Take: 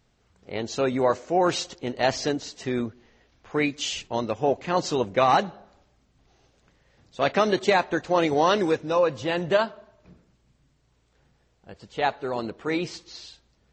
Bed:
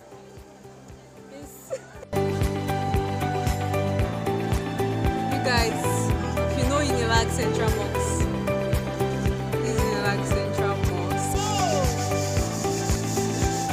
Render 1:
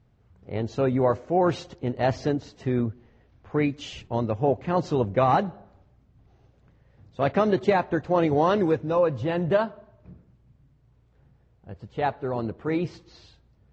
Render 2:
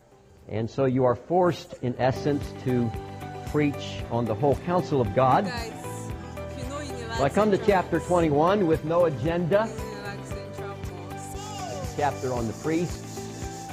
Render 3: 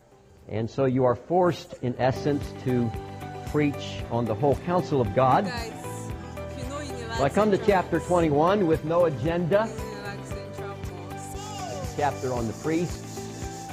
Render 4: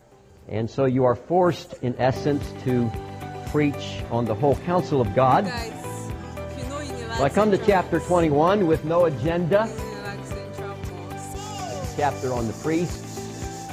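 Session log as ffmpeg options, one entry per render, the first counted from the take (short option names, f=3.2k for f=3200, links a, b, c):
-af "lowpass=f=1.2k:p=1,equalizer=f=99:t=o:w=1.5:g=10.5"
-filter_complex "[1:a]volume=-11dB[a];[0:a][a]amix=inputs=2:normalize=0"
-af anull
-af "volume=2.5dB"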